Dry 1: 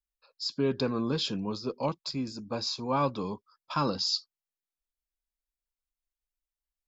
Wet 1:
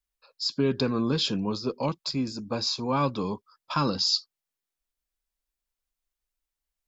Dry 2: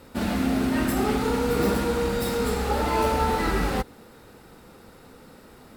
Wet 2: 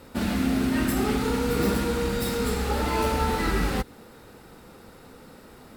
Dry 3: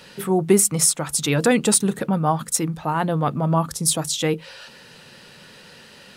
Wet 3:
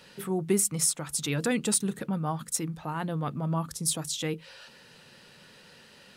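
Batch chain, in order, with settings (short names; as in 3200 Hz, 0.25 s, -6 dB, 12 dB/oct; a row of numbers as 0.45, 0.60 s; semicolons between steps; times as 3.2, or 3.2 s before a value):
dynamic EQ 700 Hz, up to -5 dB, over -34 dBFS, Q 0.85; normalise peaks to -12 dBFS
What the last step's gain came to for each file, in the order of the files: +4.5, +1.0, -8.0 dB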